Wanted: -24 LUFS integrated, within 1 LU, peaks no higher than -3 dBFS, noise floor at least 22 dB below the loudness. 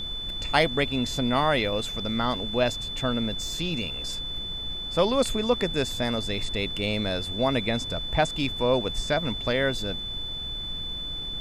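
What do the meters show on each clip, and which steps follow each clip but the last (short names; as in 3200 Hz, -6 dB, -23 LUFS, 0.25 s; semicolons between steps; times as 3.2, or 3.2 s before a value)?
steady tone 3500 Hz; tone level -32 dBFS; noise floor -34 dBFS; noise floor target -49 dBFS; loudness -26.5 LUFS; peak -6.5 dBFS; loudness target -24.0 LUFS
-> notch 3500 Hz, Q 30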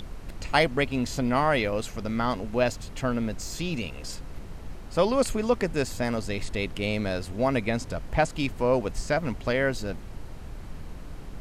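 steady tone none; noise floor -40 dBFS; noise floor target -50 dBFS
-> noise print and reduce 10 dB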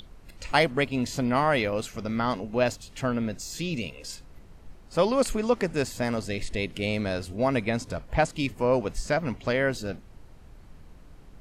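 noise floor -50 dBFS; loudness -27.5 LUFS; peak -7.0 dBFS; loudness target -24.0 LUFS
-> gain +3.5 dB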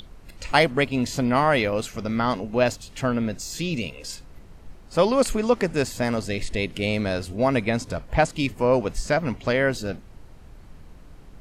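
loudness -24.0 LUFS; peak -3.0 dBFS; noise floor -46 dBFS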